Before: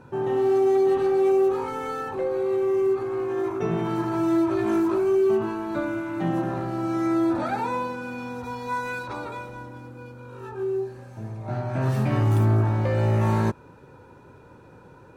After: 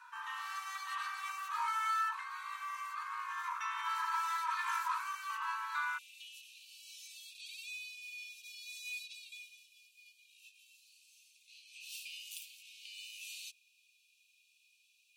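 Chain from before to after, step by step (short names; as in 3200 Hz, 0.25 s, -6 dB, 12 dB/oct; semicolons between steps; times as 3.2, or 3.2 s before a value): Chebyshev high-pass 940 Hz, order 8, from 5.97 s 2500 Hz; gain +1 dB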